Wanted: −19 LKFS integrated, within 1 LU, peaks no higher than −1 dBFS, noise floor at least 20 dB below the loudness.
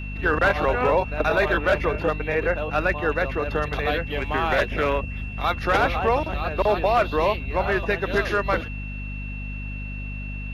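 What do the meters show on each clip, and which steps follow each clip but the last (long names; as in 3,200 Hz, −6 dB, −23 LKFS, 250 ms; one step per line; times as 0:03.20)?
mains hum 50 Hz; hum harmonics up to 250 Hz; level of the hum −30 dBFS; interfering tone 2,700 Hz; level of the tone −37 dBFS; integrated loudness −23.5 LKFS; sample peak −9.0 dBFS; target loudness −19.0 LKFS
→ mains-hum notches 50/100/150/200/250 Hz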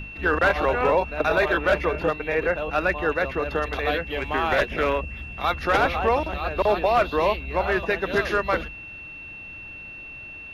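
mains hum none found; interfering tone 2,700 Hz; level of the tone −37 dBFS
→ notch filter 2,700 Hz, Q 30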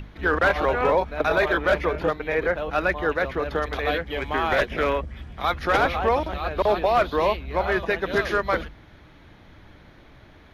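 interfering tone none found; integrated loudness −23.5 LKFS; sample peak −10.5 dBFS; target loudness −19.0 LKFS
→ level +4.5 dB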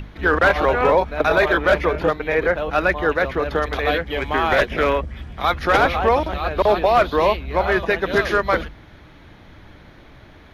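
integrated loudness −19.0 LKFS; sample peak −6.0 dBFS; background noise floor −46 dBFS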